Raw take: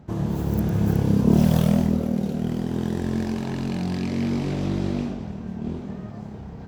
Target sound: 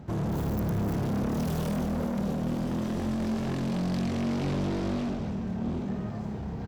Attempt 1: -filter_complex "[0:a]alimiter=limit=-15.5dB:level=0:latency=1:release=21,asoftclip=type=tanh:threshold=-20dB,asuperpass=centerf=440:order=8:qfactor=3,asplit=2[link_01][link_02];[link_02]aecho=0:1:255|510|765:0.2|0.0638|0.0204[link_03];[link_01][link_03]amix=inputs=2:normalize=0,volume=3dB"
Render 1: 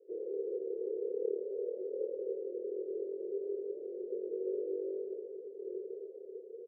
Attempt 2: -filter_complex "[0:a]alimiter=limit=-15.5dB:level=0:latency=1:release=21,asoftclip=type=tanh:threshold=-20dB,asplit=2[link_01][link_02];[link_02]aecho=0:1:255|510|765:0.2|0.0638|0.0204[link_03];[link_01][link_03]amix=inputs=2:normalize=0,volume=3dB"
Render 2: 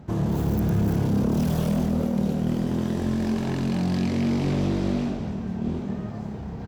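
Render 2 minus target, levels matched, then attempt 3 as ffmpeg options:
soft clipping: distortion −9 dB
-filter_complex "[0:a]alimiter=limit=-15.5dB:level=0:latency=1:release=21,asoftclip=type=tanh:threshold=-29.5dB,asplit=2[link_01][link_02];[link_02]aecho=0:1:255|510|765:0.2|0.0638|0.0204[link_03];[link_01][link_03]amix=inputs=2:normalize=0,volume=3dB"

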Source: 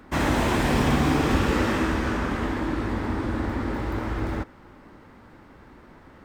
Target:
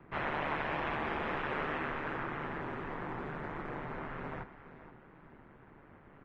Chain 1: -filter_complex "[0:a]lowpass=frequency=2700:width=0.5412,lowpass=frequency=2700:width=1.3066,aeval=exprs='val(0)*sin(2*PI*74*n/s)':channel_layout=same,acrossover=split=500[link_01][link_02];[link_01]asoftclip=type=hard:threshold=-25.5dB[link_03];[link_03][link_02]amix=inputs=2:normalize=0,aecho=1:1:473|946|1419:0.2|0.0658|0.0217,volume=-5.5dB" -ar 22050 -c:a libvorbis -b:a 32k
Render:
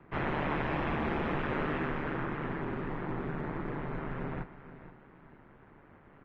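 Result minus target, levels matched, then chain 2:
hard clipping: distortion −7 dB
-filter_complex "[0:a]lowpass=frequency=2700:width=0.5412,lowpass=frequency=2700:width=1.3066,aeval=exprs='val(0)*sin(2*PI*74*n/s)':channel_layout=same,acrossover=split=500[link_01][link_02];[link_01]asoftclip=type=hard:threshold=-37dB[link_03];[link_03][link_02]amix=inputs=2:normalize=0,aecho=1:1:473|946|1419:0.2|0.0658|0.0217,volume=-5.5dB" -ar 22050 -c:a libvorbis -b:a 32k

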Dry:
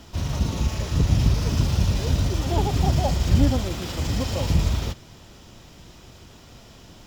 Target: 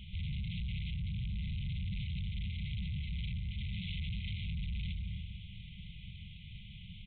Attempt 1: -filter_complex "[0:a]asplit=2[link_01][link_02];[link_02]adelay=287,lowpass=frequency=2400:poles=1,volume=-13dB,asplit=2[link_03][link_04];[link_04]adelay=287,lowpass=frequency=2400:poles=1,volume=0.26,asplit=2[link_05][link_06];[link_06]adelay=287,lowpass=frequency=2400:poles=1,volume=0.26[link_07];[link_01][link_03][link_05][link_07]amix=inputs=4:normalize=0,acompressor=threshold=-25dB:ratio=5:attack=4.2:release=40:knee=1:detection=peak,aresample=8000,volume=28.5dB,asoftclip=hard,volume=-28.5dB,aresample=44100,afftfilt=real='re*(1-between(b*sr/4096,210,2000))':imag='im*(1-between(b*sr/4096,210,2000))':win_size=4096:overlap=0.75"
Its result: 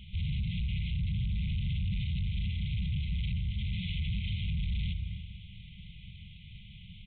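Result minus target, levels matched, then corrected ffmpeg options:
gain into a clipping stage and back: distortion −4 dB
-filter_complex "[0:a]asplit=2[link_01][link_02];[link_02]adelay=287,lowpass=frequency=2400:poles=1,volume=-13dB,asplit=2[link_03][link_04];[link_04]adelay=287,lowpass=frequency=2400:poles=1,volume=0.26,asplit=2[link_05][link_06];[link_06]adelay=287,lowpass=frequency=2400:poles=1,volume=0.26[link_07];[link_01][link_03][link_05][link_07]amix=inputs=4:normalize=0,acompressor=threshold=-25dB:ratio=5:attack=4.2:release=40:knee=1:detection=peak,aresample=8000,volume=35dB,asoftclip=hard,volume=-35dB,aresample=44100,afftfilt=real='re*(1-between(b*sr/4096,210,2000))':imag='im*(1-between(b*sr/4096,210,2000))':win_size=4096:overlap=0.75"

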